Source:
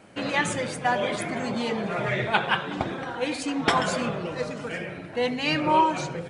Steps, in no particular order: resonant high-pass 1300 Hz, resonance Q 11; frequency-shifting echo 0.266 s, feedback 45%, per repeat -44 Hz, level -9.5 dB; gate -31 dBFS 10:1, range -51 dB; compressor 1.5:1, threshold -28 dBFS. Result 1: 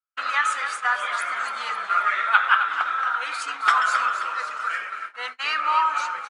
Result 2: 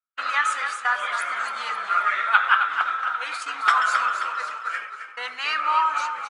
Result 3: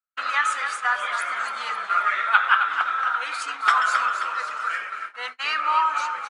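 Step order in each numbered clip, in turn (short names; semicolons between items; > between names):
compressor > frequency-shifting echo > resonant high-pass > gate; gate > frequency-shifting echo > compressor > resonant high-pass; frequency-shifting echo > compressor > resonant high-pass > gate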